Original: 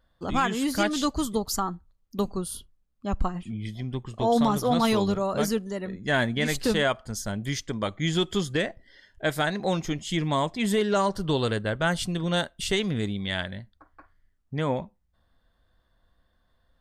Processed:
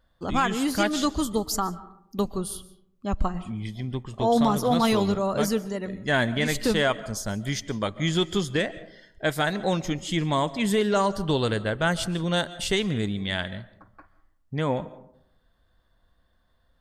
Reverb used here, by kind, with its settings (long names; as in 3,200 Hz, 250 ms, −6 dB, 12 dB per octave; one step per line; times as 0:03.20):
comb and all-pass reverb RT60 0.74 s, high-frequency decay 0.4×, pre-delay 100 ms, DRR 17 dB
level +1 dB